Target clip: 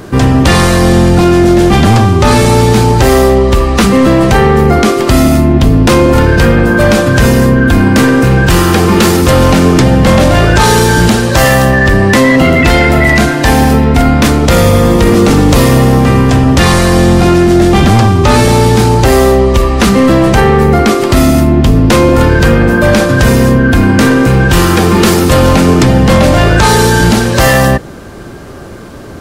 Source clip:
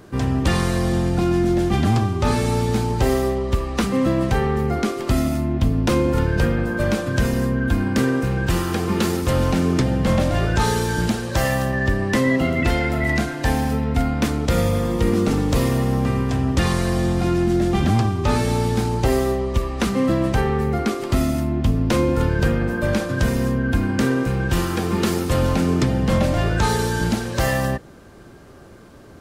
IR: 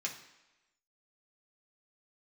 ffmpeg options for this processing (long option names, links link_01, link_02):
-af "apsyclip=18dB,volume=-1.5dB"